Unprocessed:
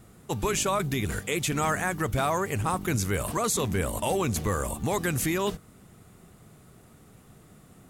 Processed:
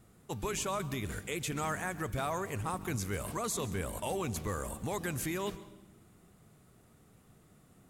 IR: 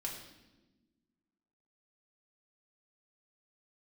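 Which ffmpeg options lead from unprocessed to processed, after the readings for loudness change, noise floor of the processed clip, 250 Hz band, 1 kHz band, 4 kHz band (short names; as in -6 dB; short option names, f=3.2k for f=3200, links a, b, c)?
-8.5 dB, -63 dBFS, -8.5 dB, -8.5 dB, -8.5 dB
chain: -filter_complex "[0:a]asplit=2[a][b];[1:a]atrim=start_sample=2205,adelay=134[c];[b][c]afir=irnorm=-1:irlink=0,volume=-15.5dB[d];[a][d]amix=inputs=2:normalize=0,volume=-8.5dB"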